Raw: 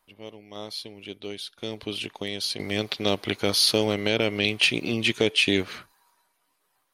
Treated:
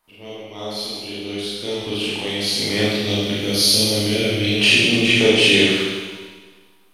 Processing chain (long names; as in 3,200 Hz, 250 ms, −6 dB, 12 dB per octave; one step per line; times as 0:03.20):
0:02.86–0:04.51: parametric band 1,000 Hz −13 dB 2.4 octaves
four-comb reverb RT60 1.5 s, combs from 26 ms, DRR −9 dB